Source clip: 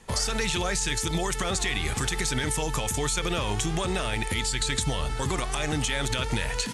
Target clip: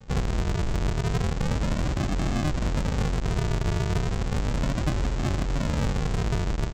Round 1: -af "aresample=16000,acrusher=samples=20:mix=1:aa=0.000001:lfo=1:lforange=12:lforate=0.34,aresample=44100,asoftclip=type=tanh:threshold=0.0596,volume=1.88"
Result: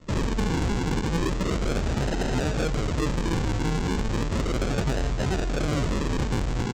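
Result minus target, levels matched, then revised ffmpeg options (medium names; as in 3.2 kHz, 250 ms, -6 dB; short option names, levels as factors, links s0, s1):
decimation with a swept rate: distortion -4 dB
-af "aresample=16000,acrusher=samples=47:mix=1:aa=0.000001:lfo=1:lforange=28.2:lforate=0.34,aresample=44100,asoftclip=type=tanh:threshold=0.0596,volume=1.88"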